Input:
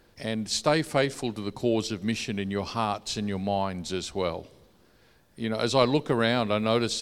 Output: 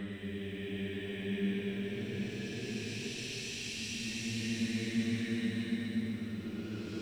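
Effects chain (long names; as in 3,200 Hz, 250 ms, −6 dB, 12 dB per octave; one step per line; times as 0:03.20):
played backwards from end to start
extreme stretch with random phases 13×, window 0.25 s, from 0:04.52
on a send: flutter between parallel walls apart 9.5 metres, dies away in 0.35 s
on the sum: feedback echo at a low word length 123 ms, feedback 80%, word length 9 bits, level −10 dB
level −8.5 dB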